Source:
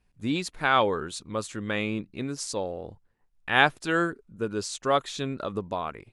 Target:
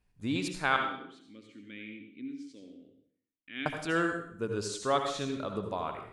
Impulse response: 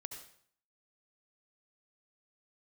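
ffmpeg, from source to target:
-filter_complex "[0:a]asettb=1/sr,asplit=3[a][b][c];[a]atrim=end=0.764[d];[b]atrim=start=0.76:end=3.66,asetpts=PTS-STARTPTS,afade=t=in:d=0.004:c=qsin,afade=t=out:st=2.896:d=0.004:c=qsin,asplit=3[e][f][g];[e]bandpass=f=270:t=q:w=8,volume=0dB[h];[f]bandpass=f=2.29k:t=q:w=8,volume=-6dB[i];[g]bandpass=f=3.01k:t=q:w=8,volume=-9dB[j];[h][i][j]amix=inputs=3:normalize=0[k];[c]atrim=start=3.656[l];[d][k]acrossfade=d=0.004:c1=hsin:c2=qsin[m];[m][l]acrossfade=d=0.004:c1=qsin:c2=hsin[n];[1:a]atrim=start_sample=2205[o];[n][o]afir=irnorm=-1:irlink=0"

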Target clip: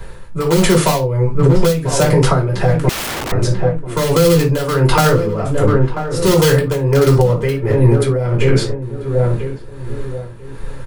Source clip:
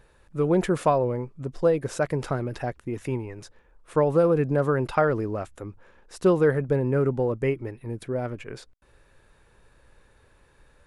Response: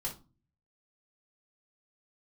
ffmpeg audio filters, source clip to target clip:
-filter_complex "[0:a]asplit=2[a][b];[b]aeval=exprs='(mod(5.62*val(0)+1,2)-1)/5.62':c=same,volume=-12dB[c];[a][c]amix=inputs=2:normalize=0,asplit=2[d][e];[e]adelay=989,lowpass=f=1.9k:p=1,volume=-12.5dB,asplit=2[f][g];[g]adelay=989,lowpass=f=1.9k:p=1,volume=0.35,asplit=2[h][i];[i]adelay=989,lowpass=f=1.9k:p=1,volume=0.35,asplit=2[j][k];[k]adelay=989,lowpass=f=1.9k:p=1,volume=0.35[l];[d][f][h][j][l]amix=inputs=5:normalize=0,acrossover=split=430[m][n];[m]acompressor=threshold=-32dB:ratio=6[o];[o][n]amix=inputs=2:normalize=0[p];[1:a]atrim=start_sample=2205,atrim=end_sample=4410[q];[p][q]afir=irnorm=-1:irlink=0,acrossover=split=240|3000[r][s][t];[s]acompressor=threshold=-30dB:ratio=6[u];[r][u][t]amix=inputs=3:normalize=0,tremolo=f=1.4:d=0.66,asettb=1/sr,asplit=3[v][w][x];[v]atrim=end=2.894[y];[w]atrim=start=2.89:end=3.32,asetpts=PTS-STARTPTS,afade=t=in:d=0.004:c=qsin,afade=t=out:st=0.426:d=0.004:c=qsin,aeval=exprs='(mod(79.4*val(0)+1,2)-1)/79.4':c=same[z];[x]atrim=start=3.316[aa];[y][z]acrossfade=d=0.004:c1=hsin:c2=qsin[ab];[ab][aa]acrossfade=d=0.004:c1=qsin:c2=hsin,alimiter=level_in=21dB:limit=-1dB:release=50:level=0:latency=1,volume=-1dB"

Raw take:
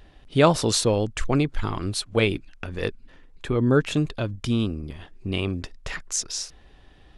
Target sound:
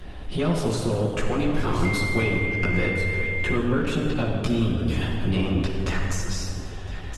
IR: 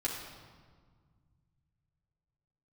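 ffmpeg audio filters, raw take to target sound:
-filter_complex "[0:a]acompressor=threshold=-34dB:ratio=2.5,aeval=exprs='0.178*(cos(1*acos(clip(val(0)/0.178,-1,1)))-cos(1*PI/2))+0.00158*(cos(2*acos(clip(val(0)/0.178,-1,1)))-cos(2*PI/2))+0.0112*(cos(4*acos(clip(val(0)/0.178,-1,1)))-cos(4*PI/2))+0.0224*(cos(5*acos(clip(val(0)/0.178,-1,1)))-cos(5*PI/2))+0.00126*(cos(7*acos(clip(val(0)/0.178,-1,1)))-cos(7*PI/2))':c=same,aecho=1:1:1017:0.1,acrossover=split=300|680|1400[a][b][c][d];[a]acompressor=threshold=-34dB:ratio=4[e];[b]acompressor=threshold=-39dB:ratio=4[f];[c]acompressor=threshold=-44dB:ratio=4[g];[d]acompressor=threshold=-44dB:ratio=4[h];[e][f][g][h]amix=inputs=4:normalize=0,asettb=1/sr,asplit=3[i][j][k];[i]atrim=end=4.774[l];[j]atrim=start=4.77:end=5.29,asetpts=PTS-STARTPTS,afade=t=in:d=0.004:c=qsin,afade=t=out:st=0.516:d=0.004:c=qsin,highshelf=f=2.5k:g=6.5[m];[k]atrim=start=5.286[n];[l][m]acrossfade=d=0.004:c1=hsin:c2=qsin[o];[o][n]acrossfade=d=0.004:c1=qsin:c2=hsin[p];[1:a]atrim=start_sample=2205,asetrate=27342,aresample=44100[q];[p][q]afir=irnorm=-1:irlink=0,asettb=1/sr,asplit=3[r][s][t];[r]atrim=end=1.854[u];[s]atrim=start=1.85:end=3.56,asetpts=PTS-STARTPTS,afade=t=in:d=0.004:c=qsin,afade=t=out:st=1.706:d=0.004:c=qsin,aeval=exprs='val(0)+0.0316*sin(2*PI*2100*n/s)':c=same[v];[t]atrim=start=3.556[w];[u][v]acrossfade=d=0.004:c1=hsin:c2=qsin[x];[x][w]acrossfade=d=0.004:c1=qsin:c2=hsin,volume=3.5dB" -ar 48000 -c:a libopus -b:a 24k

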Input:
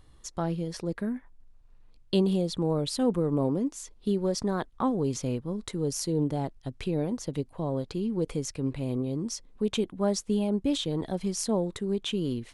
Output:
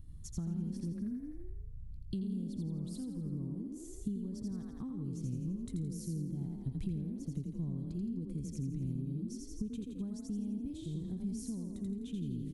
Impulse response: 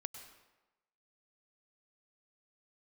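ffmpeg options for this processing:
-filter_complex "[0:a]asplit=2[a][b];[b]asplit=7[c][d][e][f][g][h][i];[c]adelay=84,afreqshift=30,volume=-3dB[j];[d]adelay=168,afreqshift=60,volume=-8.7dB[k];[e]adelay=252,afreqshift=90,volume=-14.4dB[l];[f]adelay=336,afreqshift=120,volume=-20dB[m];[g]adelay=420,afreqshift=150,volume=-25.7dB[n];[h]adelay=504,afreqshift=180,volume=-31.4dB[o];[i]adelay=588,afreqshift=210,volume=-37.1dB[p];[j][k][l][m][n][o][p]amix=inputs=7:normalize=0[q];[a][q]amix=inputs=2:normalize=0,acompressor=threshold=-36dB:ratio=12,firequalizer=gain_entry='entry(160,0);entry(560,-28);entry(990,-25);entry(9800,-10)':delay=0.05:min_phase=1,asplit=2[r][s];[s]aecho=0:1:136:0.0944[t];[r][t]amix=inputs=2:normalize=0,volume=6.5dB"

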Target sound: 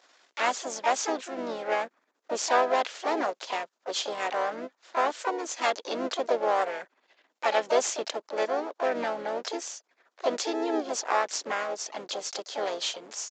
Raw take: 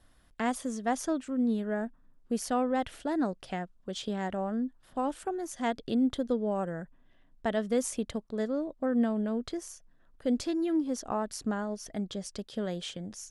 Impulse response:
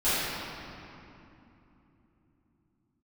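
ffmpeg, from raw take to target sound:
-filter_complex "[0:a]aeval=exprs='if(lt(val(0),0),0.251*val(0),val(0))':c=same,highpass=f=400:w=0.5412,highpass=f=400:w=1.3066,highshelf=f=3.9k:g=6.5,asplit=4[a][b][c][d];[b]asetrate=35002,aresample=44100,atempo=1.25992,volume=-13dB[e];[c]asetrate=55563,aresample=44100,atempo=0.793701,volume=-8dB[f];[d]asetrate=58866,aresample=44100,atempo=0.749154,volume=-6dB[g];[a][e][f][g]amix=inputs=4:normalize=0,aresample=16000,aresample=44100,volume=8.5dB"

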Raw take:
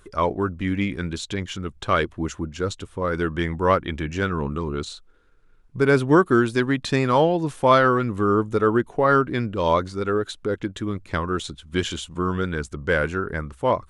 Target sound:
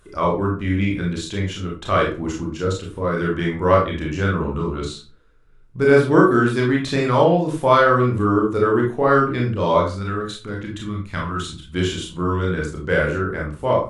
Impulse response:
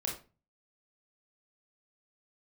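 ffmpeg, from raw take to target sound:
-filter_complex "[0:a]asettb=1/sr,asplit=3[a][b][c];[a]atrim=end=9.904[d];[b]atrim=start=9.9:end=11.63,asetpts=PTS-STARTPTS,afade=t=in:d=0.004:c=qsin,afade=t=out:st=1.726:d=0.004:c=qsin,equalizer=f=440:t=o:w=1.2:g=-11[e];[c]atrim=start=11.626[f];[d][e]acrossfade=d=0.004:c1=hsin:c2=qsin[g];[g][f]acrossfade=d=0.004:c1=qsin:c2=hsin[h];[1:a]atrim=start_sample=2205,asetrate=41454,aresample=44100[i];[h][i]afir=irnorm=-1:irlink=0,volume=-1dB"

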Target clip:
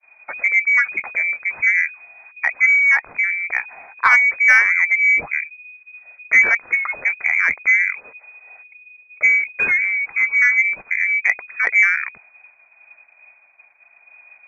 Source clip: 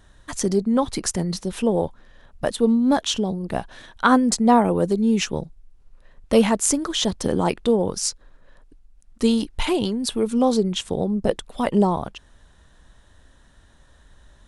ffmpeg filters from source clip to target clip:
-filter_complex "[0:a]lowpass=f=2.1k:t=q:w=0.5098,lowpass=f=2.1k:t=q:w=0.6013,lowpass=f=2.1k:t=q:w=0.9,lowpass=f=2.1k:t=q:w=2.563,afreqshift=-2500,asettb=1/sr,asplit=3[a][b][c];[a]atrim=end=7.944[d];[b]atrim=start=7.94:end=9.37,asetpts=PTS-STARTPTS,afade=t=in:d=0.004:c=qsin,afade=t=out:st=1.426:d=0.004:c=qsin,equalizer=f=490:w=1.6:g=11.5[e];[c]atrim=start=9.366[f];[d][e]acrossfade=d=0.004:c1=hsin:c2=qsin[g];[g][f]acrossfade=d=0.004:c1=qsin:c2=hsin,asplit=2[h][i];[i]acontrast=46,volume=0dB[j];[h][j]amix=inputs=2:normalize=0,agate=range=-33dB:threshold=-38dB:ratio=3:detection=peak,volume=-5.5dB"

